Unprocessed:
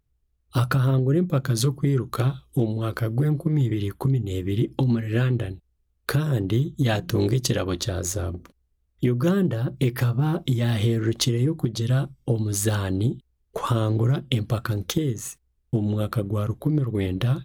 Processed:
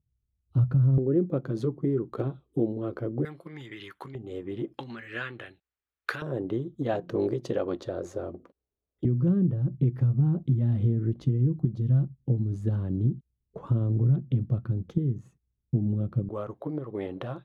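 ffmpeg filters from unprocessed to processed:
ffmpeg -i in.wav -af "asetnsamples=nb_out_samples=441:pad=0,asendcmd='0.98 bandpass f 370;3.25 bandpass f 1900;4.15 bandpass f 700;4.74 bandpass f 1700;6.22 bandpass f 520;9.05 bandpass f 150;16.29 bandpass f 710',bandpass=frequency=120:width_type=q:width=1.2:csg=0" out.wav

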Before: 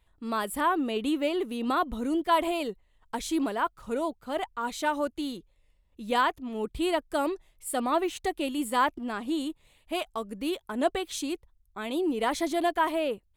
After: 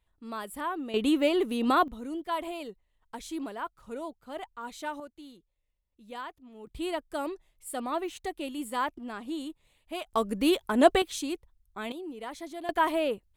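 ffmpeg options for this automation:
ffmpeg -i in.wav -af "asetnsamples=nb_out_samples=441:pad=0,asendcmd='0.94 volume volume 3dB;1.88 volume volume -8dB;5 volume volume -15dB;6.67 volume volume -5.5dB;10.13 volume volume 6.5dB;11.02 volume volume -1dB;11.92 volume volume -12dB;12.69 volume volume 0.5dB',volume=-7.5dB" out.wav

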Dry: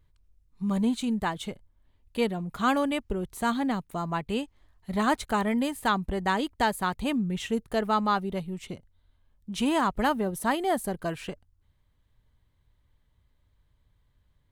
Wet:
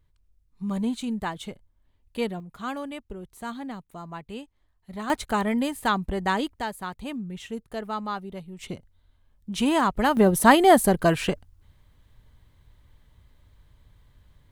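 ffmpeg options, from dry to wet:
ffmpeg -i in.wav -af "asetnsamples=nb_out_samples=441:pad=0,asendcmd='2.4 volume volume -8dB;5.1 volume volume 1.5dB;6.59 volume volume -6dB;8.59 volume volume 3dB;10.17 volume volume 11dB',volume=-1.5dB" out.wav

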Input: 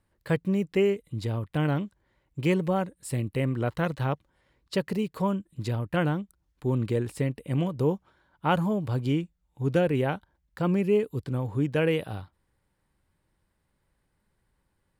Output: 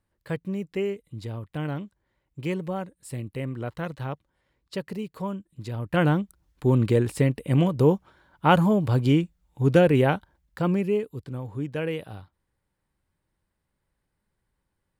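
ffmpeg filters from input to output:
ffmpeg -i in.wav -af "volume=6dB,afade=type=in:start_time=5.71:duration=0.42:silence=0.298538,afade=type=out:start_time=10.11:duration=1:silence=0.298538" out.wav

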